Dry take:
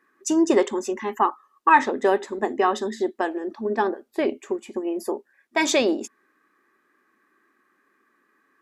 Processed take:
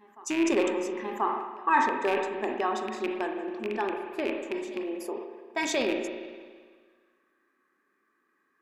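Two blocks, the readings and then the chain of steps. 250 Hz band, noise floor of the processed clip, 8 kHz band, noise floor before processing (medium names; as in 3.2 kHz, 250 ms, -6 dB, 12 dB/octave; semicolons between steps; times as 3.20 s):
-6.0 dB, -73 dBFS, -7.5 dB, -68 dBFS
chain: rattle on loud lows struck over -29 dBFS, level -14 dBFS; reverse echo 1035 ms -22 dB; spring tank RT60 1.7 s, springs 33/55 ms, chirp 75 ms, DRR 4 dB; decay stretcher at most 57 dB/s; trim -8.5 dB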